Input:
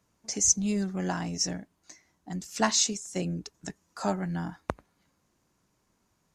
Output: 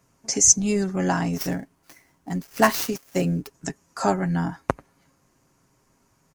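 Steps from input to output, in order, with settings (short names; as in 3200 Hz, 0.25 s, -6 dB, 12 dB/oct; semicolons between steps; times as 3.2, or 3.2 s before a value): 1.33–3.51 switching dead time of 0.064 ms; bell 3700 Hz -6 dB 0.54 oct; comb 7.4 ms, depth 38%; gain +8 dB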